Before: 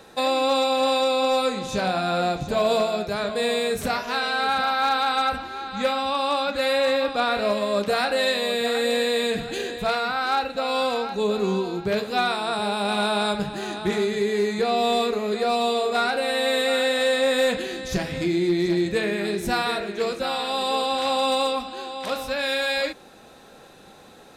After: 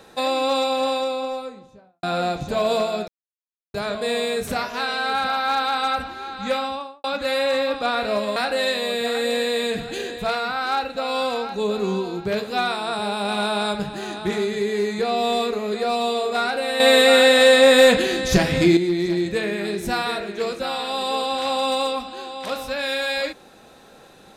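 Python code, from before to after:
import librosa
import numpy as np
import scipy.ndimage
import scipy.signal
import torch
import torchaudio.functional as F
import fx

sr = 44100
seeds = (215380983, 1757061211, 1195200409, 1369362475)

y = fx.studio_fade_out(x, sr, start_s=0.6, length_s=1.43)
y = fx.studio_fade_out(y, sr, start_s=5.93, length_s=0.45)
y = fx.edit(y, sr, fx.insert_silence(at_s=3.08, length_s=0.66),
    fx.cut(start_s=7.7, length_s=0.26),
    fx.clip_gain(start_s=16.4, length_s=1.97, db=8.5), tone=tone)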